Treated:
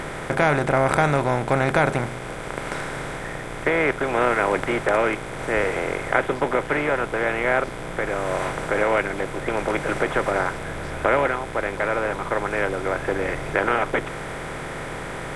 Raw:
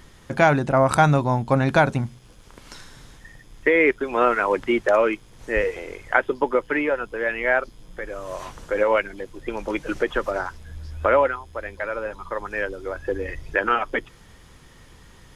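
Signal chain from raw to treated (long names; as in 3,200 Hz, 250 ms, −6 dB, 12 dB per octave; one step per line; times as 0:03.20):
compressor on every frequency bin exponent 0.4
level −7 dB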